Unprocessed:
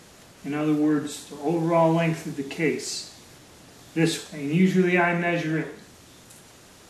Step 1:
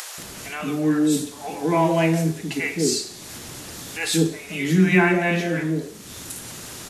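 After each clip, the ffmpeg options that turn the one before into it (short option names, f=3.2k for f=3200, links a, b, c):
-filter_complex "[0:a]acrossover=split=630[a][b];[a]adelay=180[c];[c][b]amix=inputs=2:normalize=0,acompressor=mode=upward:threshold=-32dB:ratio=2.5,crystalizer=i=1:c=0,volume=3dB"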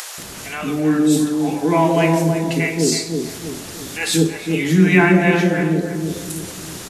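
-filter_complex "[0:a]asplit=2[a][b];[b]adelay=323,lowpass=f=940:p=1,volume=-4dB,asplit=2[c][d];[d]adelay=323,lowpass=f=940:p=1,volume=0.46,asplit=2[e][f];[f]adelay=323,lowpass=f=940:p=1,volume=0.46,asplit=2[g][h];[h]adelay=323,lowpass=f=940:p=1,volume=0.46,asplit=2[i][j];[j]adelay=323,lowpass=f=940:p=1,volume=0.46,asplit=2[k][l];[l]adelay=323,lowpass=f=940:p=1,volume=0.46[m];[a][c][e][g][i][k][m]amix=inputs=7:normalize=0,volume=3.5dB"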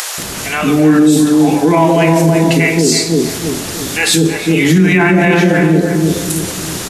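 -af "alimiter=level_in=11.5dB:limit=-1dB:release=50:level=0:latency=1,volume=-1dB"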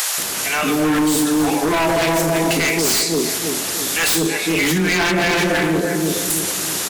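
-af "lowpass=f=2.4k:p=1,aemphasis=mode=production:type=riaa,aeval=exprs='0.282*(abs(mod(val(0)/0.282+3,4)-2)-1)':c=same,volume=-1dB"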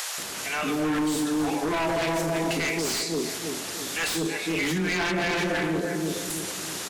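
-af "highshelf=f=11k:g=-12,volume=-8.5dB"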